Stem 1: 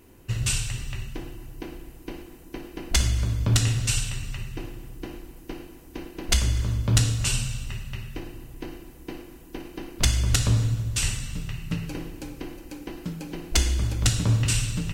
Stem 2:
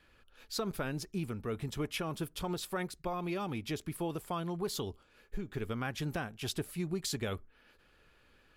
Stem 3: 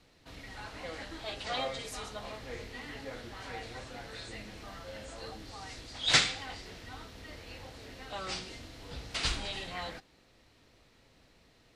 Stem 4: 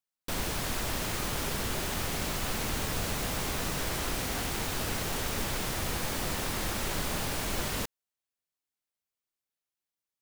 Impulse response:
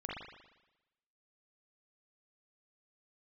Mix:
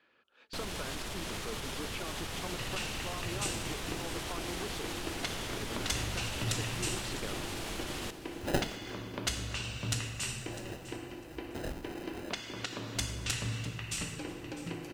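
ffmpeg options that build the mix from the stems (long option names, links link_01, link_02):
-filter_complex "[0:a]highpass=frequency=160:poles=1,adelay=2300,volume=2dB,asplit=2[link_01][link_02];[link_02]volume=-12.5dB[link_03];[1:a]volume=-2dB,asplit=2[link_04][link_05];[2:a]acrusher=samples=39:mix=1:aa=0.000001,adelay=2400,volume=-7dB[link_06];[3:a]lowpass=11000,alimiter=level_in=4.5dB:limit=-24dB:level=0:latency=1:release=132,volume=-4.5dB,equalizer=frequency=3200:width_type=o:width=0.77:gain=4,adelay=250,volume=-2dB,asplit=2[link_07][link_08];[link_08]volume=-12dB[link_09];[link_05]apad=whole_len=624227[link_10];[link_06][link_10]sidechaincompress=threshold=-49dB:ratio=8:attack=16:release=196[link_11];[link_01][link_04]amix=inputs=2:normalize=0,highpass=260,lowpass=3800,acompressor=threshold=-39dB:ratio=3,volume=0dB[link_12];[link_03][link_09]amix=inputs=2:normalize=0,aecho=0:1:652|1304|1956:1|0.16|0.0256[link_13];[link_11][link_07][link_12][link_13]amix=inputs=4:normalize=0"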